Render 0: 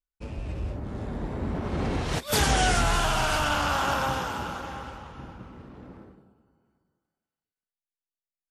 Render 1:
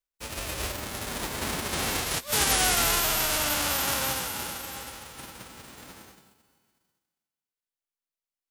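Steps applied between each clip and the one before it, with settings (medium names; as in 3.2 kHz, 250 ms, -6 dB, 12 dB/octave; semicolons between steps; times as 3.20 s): formants flattened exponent 0.3; trim -1.5 dB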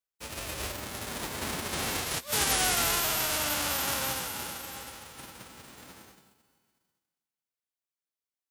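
high-pass 53 Hz; trim -3 dB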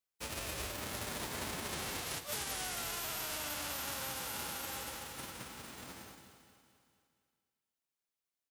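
compression 10:1, threshold -37 dBFS, peak gain reduction 14 dB; on a send: feedback delay 231 ms, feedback 52%, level -11 dB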